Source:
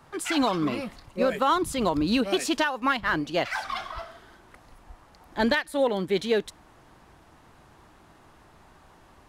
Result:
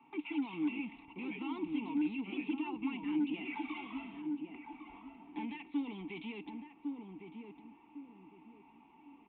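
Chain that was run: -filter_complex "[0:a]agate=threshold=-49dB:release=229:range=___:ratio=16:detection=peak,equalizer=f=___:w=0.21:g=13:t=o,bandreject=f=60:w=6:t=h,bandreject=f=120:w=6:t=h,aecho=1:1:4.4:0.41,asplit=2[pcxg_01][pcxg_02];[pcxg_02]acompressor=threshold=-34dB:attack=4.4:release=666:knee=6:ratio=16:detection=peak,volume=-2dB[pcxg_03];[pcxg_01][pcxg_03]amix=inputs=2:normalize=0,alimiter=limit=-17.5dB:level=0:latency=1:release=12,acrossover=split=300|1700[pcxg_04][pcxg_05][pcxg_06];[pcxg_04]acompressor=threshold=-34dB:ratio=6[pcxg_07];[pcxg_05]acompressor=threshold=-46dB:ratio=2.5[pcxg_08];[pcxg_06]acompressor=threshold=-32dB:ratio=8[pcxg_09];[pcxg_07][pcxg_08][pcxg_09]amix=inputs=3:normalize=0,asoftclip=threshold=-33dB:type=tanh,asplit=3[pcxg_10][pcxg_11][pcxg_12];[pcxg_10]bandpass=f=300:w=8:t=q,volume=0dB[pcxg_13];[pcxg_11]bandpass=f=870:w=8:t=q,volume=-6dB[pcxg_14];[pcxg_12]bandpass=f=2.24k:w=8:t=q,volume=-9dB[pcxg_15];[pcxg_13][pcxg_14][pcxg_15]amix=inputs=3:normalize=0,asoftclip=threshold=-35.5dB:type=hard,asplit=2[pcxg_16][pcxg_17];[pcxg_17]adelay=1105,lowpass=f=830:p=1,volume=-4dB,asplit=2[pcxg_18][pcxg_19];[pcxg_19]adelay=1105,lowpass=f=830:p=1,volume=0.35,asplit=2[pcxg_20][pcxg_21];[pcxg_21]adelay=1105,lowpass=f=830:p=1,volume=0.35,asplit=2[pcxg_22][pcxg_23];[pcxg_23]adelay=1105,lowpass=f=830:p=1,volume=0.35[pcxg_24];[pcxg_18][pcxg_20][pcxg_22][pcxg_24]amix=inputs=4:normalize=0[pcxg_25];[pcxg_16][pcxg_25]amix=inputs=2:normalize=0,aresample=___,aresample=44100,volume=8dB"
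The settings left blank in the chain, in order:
-10dB, 2.7k, 8000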